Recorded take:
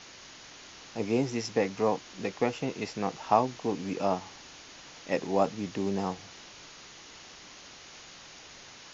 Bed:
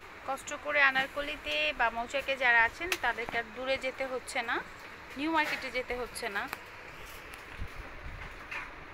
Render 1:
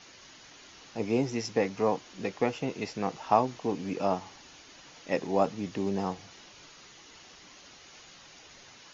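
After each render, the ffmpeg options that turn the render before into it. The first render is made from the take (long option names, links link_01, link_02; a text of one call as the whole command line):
ffmpeg -i in.wav -af "afftdn=noise_reduction=6:noise_floor=-50" out.wav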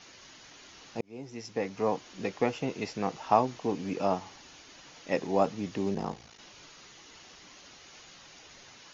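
ffmpeg -i in.wav -filter_complex "[0:a]asplit=3[link_01][link_02][link_03];[link_01]afade=type=out:start_time=5.94:duration=0.02[link_04];[link_02]aeval=exprs='val(0)*sin(2*PI*28*n/s)':channel_layout=same,afade=type=in:start_time=5.94:duration=0.02,afade=type=out:start_time=6.37:duration=0.02[link_05];[link_03]afade=type=in:start_time=6.37:duration=0.02[link_06];[link_04][link_05][link_06]amix=inputs=3:normalize=0,asplit=2[link_07][link_08];[link_07]atrim=end=1.01,asetpts=PTS-STARTPTS,afade=type=out:start_time=1.006:duration=0.004:curve=hsin[link_09];[link_08]atrim=start=1.01,asetpts=PTS-STARTPTS,afade=type=in:duration=1.05[link_10];[link_09][link_10]concat=n=2:v=0:a=1" out.wav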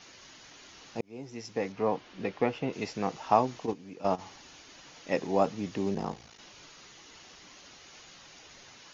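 ffmpeg -i in.wav -filter_complex "[0:a]asettb=1/sr,asplit=3[link_01][link_02][link_03];[link_01]atrim=end=1.724[link_04];[link_02]atrim=start=1.72:end=2.73,asetpts=PTS-STARTPTS,afade=type=in:duration=0.004:curve=qsin,afade=type=out:start_time=1.006:duration=0.004:curve=qsin,lowpass=3700[link_05];[link_03]atrim=start=2.726[link_06];[link_04][link_05]acrossfade=duration=0.004:curve1=hsin:curve2=qsin[link_07];[link_07][link_06]acrossfade=duration=0.004:curve1=qsin:curve2=hsin,asplit=3[link_08][link_09][link_10];[link_08]afade=type=out:start_time=3.65:duration=0.02[link_11];[link_09]agate=range=-12dB:threshold=-29dB:ratio=16:release=100:detection=peak,afade=type=in:start_time=3.65:duration=0.02,afade=type=out:start_time=4.18:duration=0.02[link_12];[link_10]afade=type=in:start_time=4.18:duration=0.02[link_13];[link_11][link_12][link_13]amix=inputs=3:normalize=0" out.wav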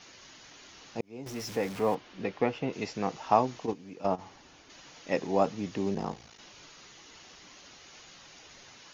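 ffmpeg -i in.wav -filter_complex "[0:a]asettb=1/sr,asplit=3[link_01][link_02][link_03];[link_01]atrim=end=1.264[link_04];[link_02]atrim=start=1.26:end=1.95,asetpts=PTS-STARTPTS,afade=type=in:duration=0.004:curve=qsin,afade=type=out:start_time=0.686:duration=0.004:curve=qsin,aeval=exprs='val(0)+0.5*0.0126*sgn(val(0))':channel_layout=same[link_05];[link_03]atrim=start=1.946[link_06];[link_04][link_05]acrossfade=duration=0.004:curve1=hsin:curve2=qsin[link_07];[link_07][link_06]acrossfade=duration=0.004:curve1=qsin:curve2=hsin,asettb=1/sr,asplit=3[link_08][link_09][link_10];[link_08]atrim=end=4.064[link_11];[link_09]atrim=start=4.06:end=4.7,asetpts=PTS-STARTPTS,afade=type=in:duration=0.004:curve=qsin,afade=type=out:start_time=0.636:duration=0.004:curve=qsin,highshelf=frequency=2000:gain=-7.5[link_12];[link_10]atrim=start=4.696[link_13];[link_11][link_12]acrossfade=duration=0.004:curve1=hsin:curve2=qsin[link_14];[link_14][link_13]acrossfade=duration=0.004:curve1=qsin:curve2=hsin" out.wav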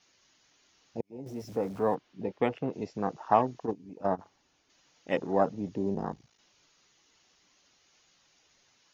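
ffmpeg -i in.wav -af "afwtdn=0.0141,highshelf=frequency=4700:gain=6" out.wav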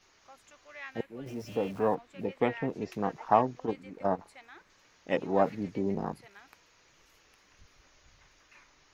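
ffmpeg -i in.wav -i bed.wav -filter_complex "[1:a]volume=-19.5dB[link_01];[0:a][link_01]amix=inputs=2:normalize=0" out.wav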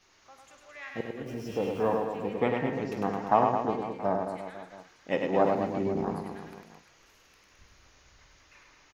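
ffmpeg -i in.wav -filter_complex "[0:a]asplit=2[link_01][link_02];[link_02]adelay=49,volume=-12dB[link_03];[link_01][link_03]amix=inputs=2:normalize=0,aecho=1:1:100|215|347.2|499.3|674.2:0.631|0.398|0.251|0.158|0.1" out.wav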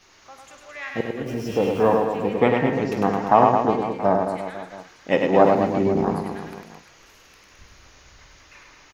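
ffmpeg -i in.wav -af "volume=9dB,alimiter=limit=-2dB:level=0:latency=1" out.wav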